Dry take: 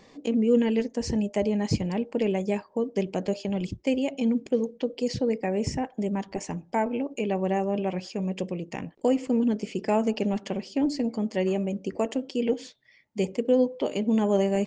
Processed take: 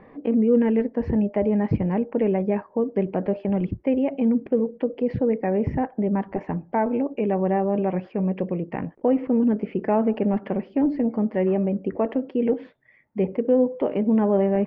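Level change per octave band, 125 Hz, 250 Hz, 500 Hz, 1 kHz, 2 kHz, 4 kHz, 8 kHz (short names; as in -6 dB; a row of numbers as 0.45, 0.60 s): +4.5 dB, +4.0 dB, +3.5 dB, +3.5 dB, -0.5 dB, under -10 dB, n/a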